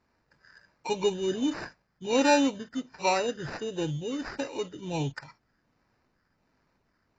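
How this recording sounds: phasing stages 6, 1.4 Hz, lowest notch 790–4600 Hz; aliases and images of a low sample rate 3.3 kHz, jitter 0%; AAC

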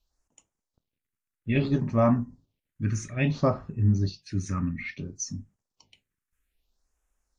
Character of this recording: phasing stages 4, 0.6 Hz, lowest notch 660–4200 Hz; AAC

